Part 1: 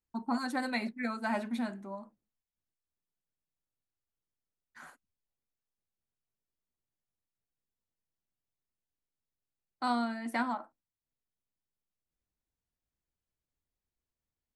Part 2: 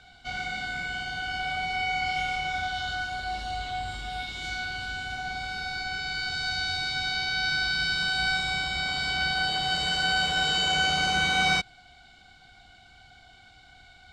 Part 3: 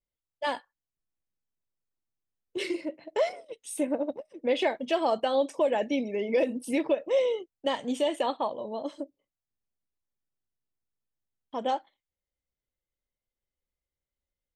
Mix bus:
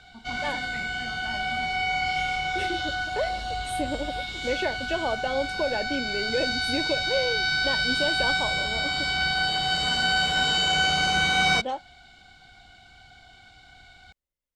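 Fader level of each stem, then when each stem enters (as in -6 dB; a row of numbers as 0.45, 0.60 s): -10.0, +2.0, -2.5 dB; 0.00, 0.00, 0.00 s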